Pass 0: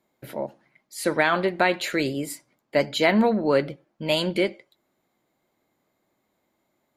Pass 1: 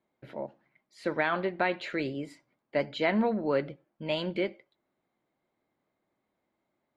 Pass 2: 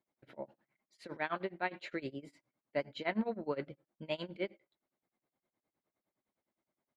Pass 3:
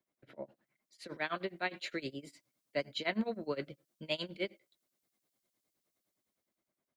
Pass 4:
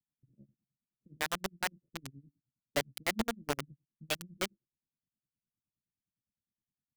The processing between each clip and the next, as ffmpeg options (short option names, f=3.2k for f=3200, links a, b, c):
-af "lowpass=3.3k,volume=-7dB"
-af "tremolo=f=9.7:d=0.94,volume=-5dB"
-filter_complex "[0:a]equalizer=f=860:w=7.3:g=-8,acrossover=split=190|710|3400[a][b][c][d];[d]dynaudnorm=f=410:g=5:m=11.5dB[e];[a][b][c][e]amix=inputs=4:normalize=0"
-filter_complex "[0:a]highshelf=f=6.4k:g=-9.5,acrossover=split=200[a][b];[b]acrusher=bits=4:mix=0:aa=0.000001[c];[a][c]amix=inputs=2:normalize=0,volume=1.5dB"